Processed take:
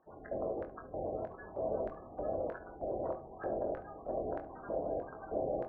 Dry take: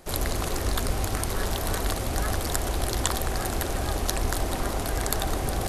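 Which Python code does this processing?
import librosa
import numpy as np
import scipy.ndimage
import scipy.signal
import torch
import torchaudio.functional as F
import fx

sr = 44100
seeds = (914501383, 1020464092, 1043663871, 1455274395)

y = scipy.signal.sosfilt(scipy.signal.butter(2, 2100.0, 'lowpass', fs=sr, output='sos'), x)
y = fx.tilt_shelf(y, sr, db=9.0, hz=810.0)
y = fx.spec_gate(y, sr, threshold_db=-30, keep='strong')
y = fx.filter_lfo_bandpass(y, sr, shape='square', hz=1.6, low_hz=590.0, high_hz=1600.0, q=4.2)
y = fx.room_early_taps(y, sr, ms=(23, 71), db=(-7.5, -16.5))
y = fx.room_shoebox(y, sr, seeds[0], volume_m3=230.0, walls='furnished', distance_m=0.59)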